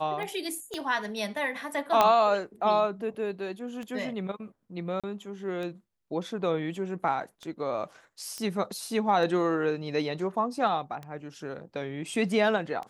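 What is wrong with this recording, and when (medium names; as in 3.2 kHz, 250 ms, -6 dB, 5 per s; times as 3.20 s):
tick 33 1/3 rpm -25 dBFS
0.74 s: pop -23 dBFS
2.01 s: pop -8 dBFS
5.00–5.04 s: dropout 36 ms
8.38 s: pop -21 dBFS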